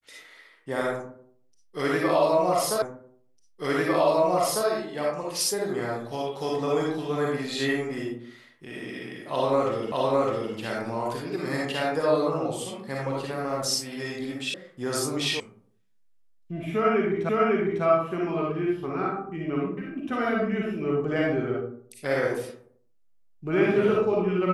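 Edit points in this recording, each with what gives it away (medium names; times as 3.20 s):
2.82 s: repeat of the last 1.85 s
9.92 s: repeat of the last 0.61 s
14.54 s: sound stops dead
15.40 s: sound stops dead
17.29 s: repeat of the last 0.55 s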